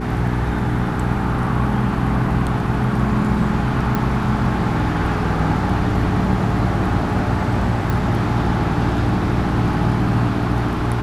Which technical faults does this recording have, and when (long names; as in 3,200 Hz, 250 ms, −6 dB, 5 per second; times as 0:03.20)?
mains hum 60 Hz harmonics 7 −24 dBFS
0:03.95: click −9 dBFS
0:07.90: click